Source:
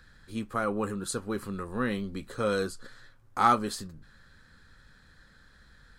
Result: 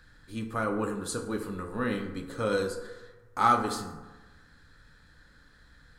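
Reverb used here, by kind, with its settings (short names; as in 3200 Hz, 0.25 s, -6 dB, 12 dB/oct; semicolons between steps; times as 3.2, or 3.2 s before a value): FDN reverb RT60 1.2 s, low-frequency decay 1×, high-frequency decay 0.45×, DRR 4 dB; gain -1.5 dB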